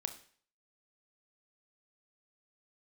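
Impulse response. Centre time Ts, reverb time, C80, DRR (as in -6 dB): 8 ms, 0.50 s, 16.0 dB, 7.5 dB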